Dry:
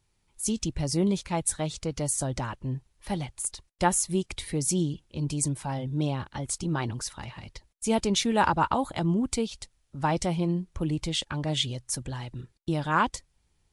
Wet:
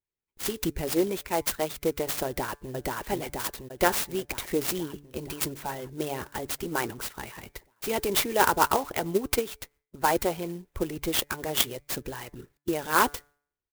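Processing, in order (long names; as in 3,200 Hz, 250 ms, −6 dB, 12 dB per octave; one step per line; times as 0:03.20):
noise gate with hold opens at −52 dBFS
parametric band 1,900 Hz +8 dB 2.2 octaves
notch filter 1,200 Hz, Q 17
hum removal 144.8 Hz, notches 17
harmonic and percussive parts rebalanced harmonic −12 dB
parametric band 410 Hz +11 dB 0.72 octaves
0:02.26–0:02.72: delay throw 480 ms, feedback 65%, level −0.5 dB
0:09.02–0:09.50: transient designer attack +6 dB, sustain −2 dB
converter with an unsteady clock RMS 0.053 ms
level −1 dB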